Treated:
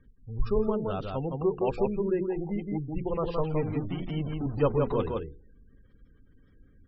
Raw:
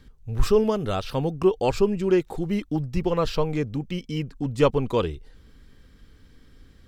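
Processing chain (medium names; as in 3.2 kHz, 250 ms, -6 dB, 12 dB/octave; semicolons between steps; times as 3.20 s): 3.36–5.03 s: jump at every zero crossing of -26.5 dBFS; low-pass 2.4 kHz 6 dB/octave; hum notches 60/120/180/240/300/360/420/480 Hz; on a send: delay 167 ms -3.5 dB; on the sum: spectral gate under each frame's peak -30 dB strong; trim -6.5 dB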